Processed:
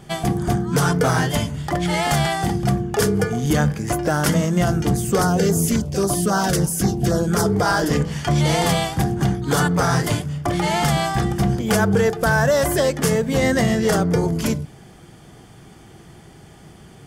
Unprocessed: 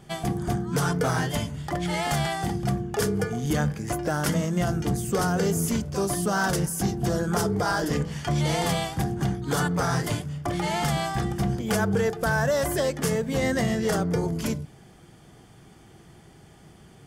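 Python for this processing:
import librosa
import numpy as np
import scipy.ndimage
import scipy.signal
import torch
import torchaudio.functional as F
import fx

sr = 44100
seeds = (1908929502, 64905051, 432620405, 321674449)

y = fx.filter_lfo_notch(x, sr, shape='saw_down', hz=3.7, low_hz=720.0, high_hz=3200.0, q=1.4, at=(5.22, 7.46))
y = y * 10.0 ** (6.5 / 20.0)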